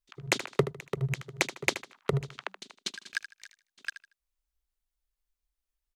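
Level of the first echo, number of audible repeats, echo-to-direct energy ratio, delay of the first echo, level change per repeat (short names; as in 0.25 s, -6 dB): -12.5 dB, 2, -12.0 dB, 77 ms, -11.5 dB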